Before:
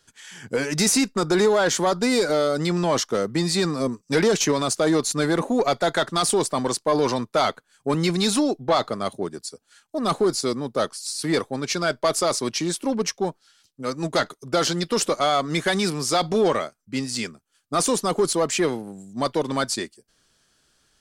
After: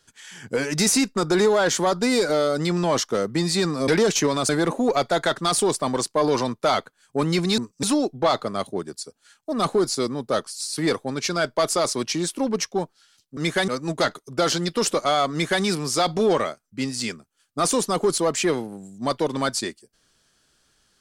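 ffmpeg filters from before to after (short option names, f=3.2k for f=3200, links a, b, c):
-filter_complex "[0:a]asplit=7[a][b][c][d][e][f][g];[a]atrim=end=3.882[h];[b]atrim=start=4.128:end=4.742[i];[c]atrim=start=5.198:end=8.292[j];[d]atrim=start=3.878:end=4.132[k];[e]atrim=start=8.288:end=13.832[l];[f]atrim=start=15.468:end=15.782[m];[g]atrim=start=13.828[n];[h][i]acrossfade=d=0.004:c1=hsin:c2=hsin[o];[o][j]acrossfade=d=0.004:c1=hsin:c2=hsin[p];[p][k]acrossfade=d=0.004:c1=hsin:c2=hsin[q];[q][l]acrossfade=d=0.004:c1=hsin:c2=hsin[r];[r][m]acrossfade=d=0.004:c1=hsin:c2=hsin[s];[s][n]acrossfade=d=0.004:c1=hsin:c2=hsin"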